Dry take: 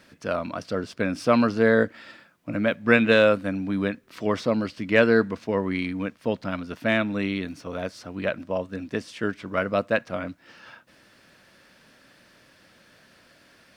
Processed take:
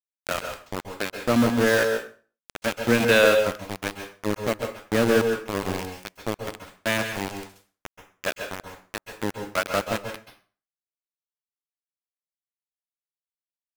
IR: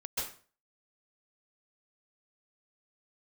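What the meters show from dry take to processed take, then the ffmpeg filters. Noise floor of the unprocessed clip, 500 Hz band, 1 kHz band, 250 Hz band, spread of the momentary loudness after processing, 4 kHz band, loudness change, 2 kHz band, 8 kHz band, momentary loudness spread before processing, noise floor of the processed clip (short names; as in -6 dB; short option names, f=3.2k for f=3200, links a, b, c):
-57 dBFS, -1.0 dB, +0.5 dB, -2.5 dB, 17 LU, +4.0 dB, 0.0 dB, -0.5 dB, n/a, 14 LU, under -85 dBFS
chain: -filter_complex "[0:a]acrossover=split=430[a][b];[a]aeval=exprs='val(0)*(1-0.7/2+0.7/2*cos(2*PI*1.4*n/s))':c=same[c];[b]aeval=exprs='val(0)*(1-0.7/2-0.7/2*cos(2*PI*1.4*n/s))':c=same[d];[c][d]amix=inputs=2:normalize=0,aeval=exprs='val(0)*gte(abs(val(0)),0.0708)':c=same,asplit=2[e][f];[1:a]atrim=start_sample=2205[g];[f][g]afir=irnorm=-1:irlink=0,volume=-6dB[h];[e][h]amix=inputs=2:normalize=0"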